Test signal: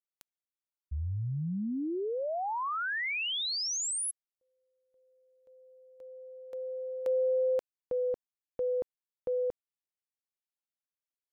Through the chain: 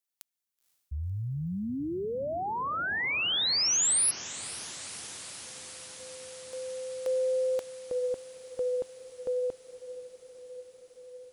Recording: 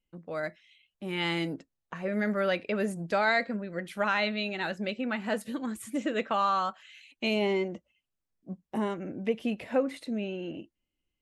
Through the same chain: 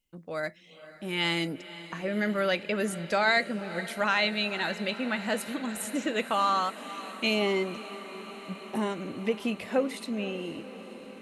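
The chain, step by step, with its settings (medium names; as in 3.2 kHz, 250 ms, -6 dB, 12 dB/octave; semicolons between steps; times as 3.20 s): treble shelf 3.1 kHz +9 dB; on a send: echo that smears into a reverb 509 ms, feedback 77%, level -15.5 dB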